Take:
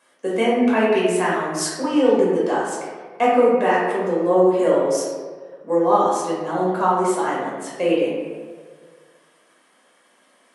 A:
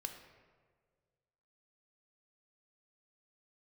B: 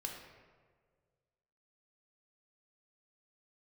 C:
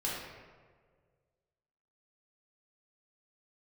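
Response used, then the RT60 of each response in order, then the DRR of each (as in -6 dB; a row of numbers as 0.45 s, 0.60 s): C; 1.7 s, 1.7 s, 1.7 s; 5.0 dB, 0.5 dB, -6.5 dB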